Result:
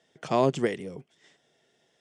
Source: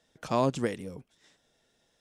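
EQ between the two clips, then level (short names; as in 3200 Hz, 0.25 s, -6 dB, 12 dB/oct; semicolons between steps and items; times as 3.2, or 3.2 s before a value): speaker cabinet 110–9400 Hz, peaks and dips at 150 Hz +5 dB, 390 Hz +8 dB, 700 Hz +5 dB, 2000 Hz +6 dB, 3100 Hz +5 dB; notch 3900 Hz, Q 17; 0.0 dB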